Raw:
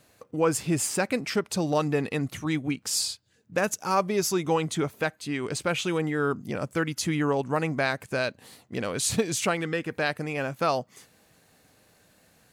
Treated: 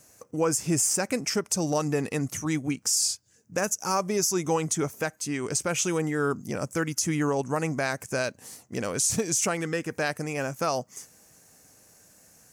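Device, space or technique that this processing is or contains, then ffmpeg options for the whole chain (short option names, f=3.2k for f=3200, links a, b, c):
over-bright horn tweeter: -af "highshelf=f=4.8k:t=q:w=3:g=7,alimiter=limit=-14.5dB:level=0:latency=1:release=96"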